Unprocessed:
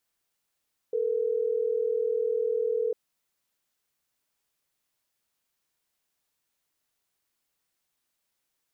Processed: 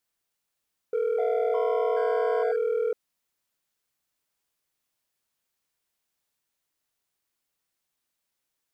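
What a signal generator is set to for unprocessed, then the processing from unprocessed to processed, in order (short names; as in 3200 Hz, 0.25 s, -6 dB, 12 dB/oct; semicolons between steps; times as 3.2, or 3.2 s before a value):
call progress tone ringback tone, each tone -27 dBFS
sample leveller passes 1; echoes that change speed 0.563 s, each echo +7 st, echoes 3, each echo -6 dB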